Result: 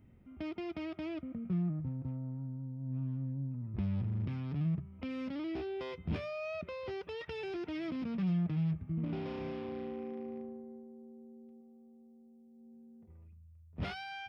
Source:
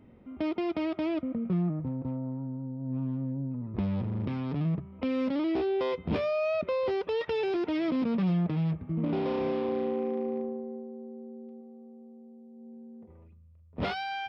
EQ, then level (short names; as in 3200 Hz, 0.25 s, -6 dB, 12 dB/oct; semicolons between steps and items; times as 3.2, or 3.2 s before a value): ten-band EQ 250 Hz -7 dB, 500 Hz -11 dB, 1000 Hz -9 dB, 2000 Hz -3 dB, 4000 Hz -8 dB; 0.0 dB